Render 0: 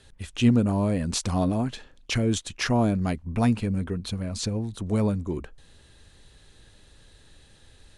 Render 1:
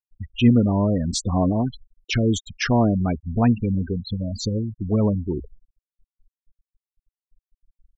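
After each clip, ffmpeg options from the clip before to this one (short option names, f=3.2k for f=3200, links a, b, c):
-af "afftfilt=real='re*gte(hypot(re,im),0.0501)':imag='im*gte(hypot(re,im),0.0501)':win_size=1024:overlap=0.75,volume=4dB"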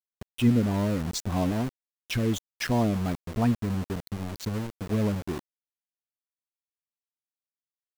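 -af "aeval=exprs='val(0)*gte(abs(val(0)),0.0501)':c=same,volume=-6dB"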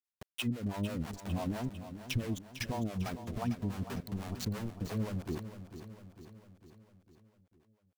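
-filter_complex "[0:a]acompressor=threshold=-27dB:ratio=6,acrossover=split=470[a][b];[a]aeval=exprs='val(0)*(1-1/2+1/2*cos(2*PI*6*n/s))':c=same[c];[b]aeval=exprs='val(0)*(1-1/2-1/2*cos(2*PI*6*n/s))':c=same[d];[c][d]amix=inputs=2:normalize=0,asplit=2[e][f];[f]aecho=0:1:451|902|1353|1804|2255|2706:0.282|0.158|0.0884|0.0495|0.0277|0.0155[g];[e][g]amix=inputs=2:normalize=0"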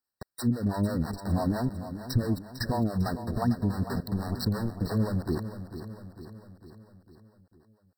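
-af "afftfilt=real='re*eq(mod(floor(b*sr/1024/1900),2),0)':imag='im*eq(mod(floor(b*sr/1024/1900),2),0)':win_size=1024:overlap=0.75,volume=8dB"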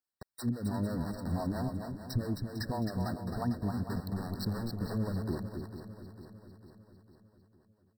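-af "aecho=1:1:264:0.501,volume=-6.5dB"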